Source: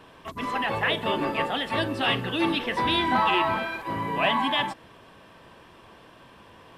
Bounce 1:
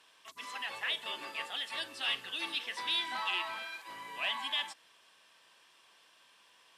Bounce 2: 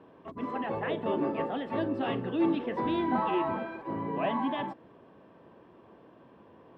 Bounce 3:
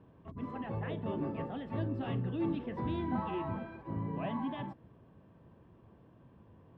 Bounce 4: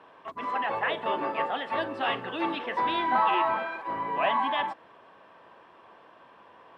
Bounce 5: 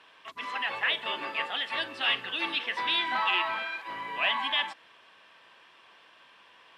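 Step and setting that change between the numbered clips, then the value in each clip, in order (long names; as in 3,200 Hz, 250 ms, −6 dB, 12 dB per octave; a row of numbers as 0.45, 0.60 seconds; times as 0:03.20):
resonant band-pass, frequency: 7,000, 320, 110, 900, 2,700 Hertz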